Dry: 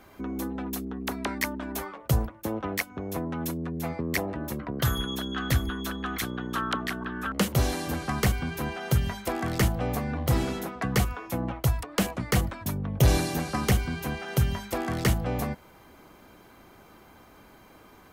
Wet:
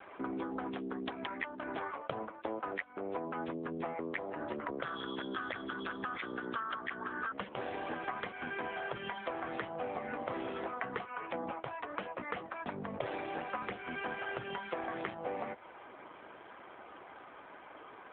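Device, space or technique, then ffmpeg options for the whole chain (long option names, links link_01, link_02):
voicemail: -af "highpass=430,lowpass=2700,acompressor=threshold=-40dB:ratio=8,volume=6.5dB" -ar 8000 -c:a libopencore_amrnb -b:a 7400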